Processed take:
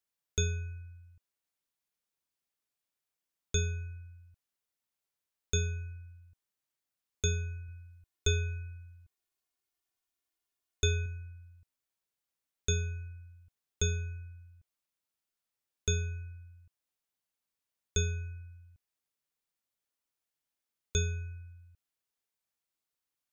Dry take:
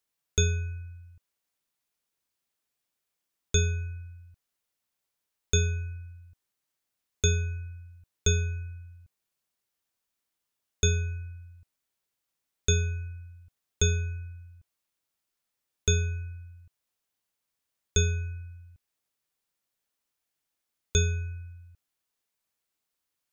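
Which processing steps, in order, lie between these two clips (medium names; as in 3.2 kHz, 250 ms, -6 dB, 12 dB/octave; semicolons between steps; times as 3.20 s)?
7.68–11.06 s: comb 2.8 ms, depth 62%; trim -6 dB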